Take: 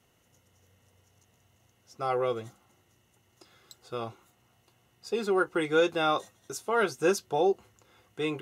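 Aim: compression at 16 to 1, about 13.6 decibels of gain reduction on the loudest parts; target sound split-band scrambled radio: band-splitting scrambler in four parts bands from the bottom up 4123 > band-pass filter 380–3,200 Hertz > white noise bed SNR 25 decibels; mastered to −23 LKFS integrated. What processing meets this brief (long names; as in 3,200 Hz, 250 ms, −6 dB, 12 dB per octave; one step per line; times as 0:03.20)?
downward compressor 16 to 1, threshold −33 dBFS
band-splitting scrambler in four parts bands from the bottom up 4123
band-pass filter 380–3,200 Hz
white noise bed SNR 25 dB
level +15 dB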